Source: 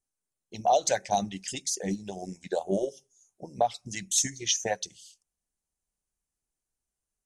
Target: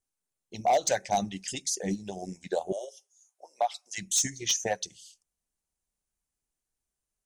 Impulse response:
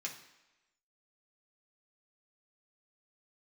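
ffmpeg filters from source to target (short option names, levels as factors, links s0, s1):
-filter_complex "[0:a]asettb=1/sr,asplit=3[s0][s1][s2];[s0]atrim=end=2.724[s3];[s1]atrim=start=2.72:end=3.98,asetpts=PTS-STARTPTS,afade=t=in:d=0.004:c=qsin,afade=t=out:st=1.256:d=0.004:c=qsin,highpass=f=640:w=0.5412,highpass=f=640:w=1.3066[s4];[s2]atrim=start=3.976[s5];[s3][s4]acrossfade=d=0.004:c1=hsin:c2=qsin[s6];[s6][s5]acrossfade=d=0.004:c1=qsin:c2=hsin,volume=7.94,asoftclip=hard,volume=0.126"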